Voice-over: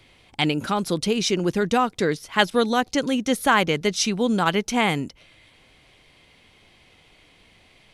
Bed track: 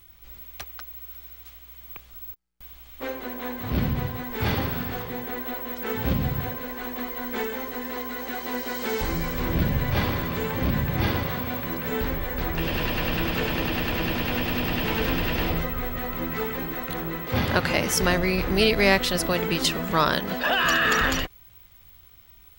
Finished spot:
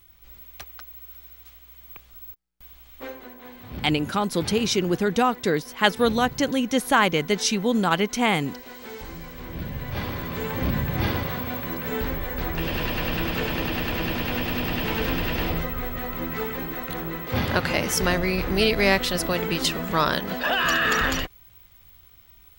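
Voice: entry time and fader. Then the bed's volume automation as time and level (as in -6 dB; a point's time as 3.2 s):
3.45 s, -0.5 dB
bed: 2.97 s -2.5 dB
3.4 s -11 dB
9.47 s -11 dB
10.54 s -0.5 dB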